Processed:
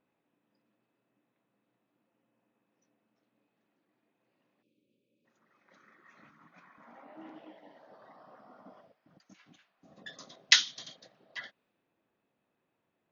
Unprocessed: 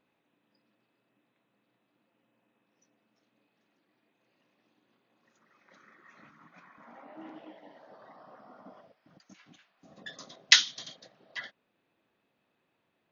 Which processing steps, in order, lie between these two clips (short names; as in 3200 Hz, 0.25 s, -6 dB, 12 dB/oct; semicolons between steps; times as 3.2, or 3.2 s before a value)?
spectral delete 4.63–5.25, 610–2200 Hz; mismatched tape noise reduction decoder only; gain -2.5 dB